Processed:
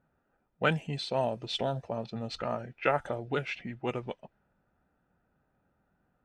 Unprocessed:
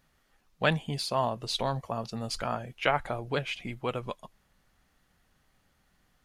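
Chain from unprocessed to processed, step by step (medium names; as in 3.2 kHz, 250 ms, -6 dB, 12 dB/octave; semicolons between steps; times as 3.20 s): level-controlled noise filter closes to 1.3 kHz, open at -24.5 dBFS; comb of notches 1.1 kHz; formant shift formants -2 st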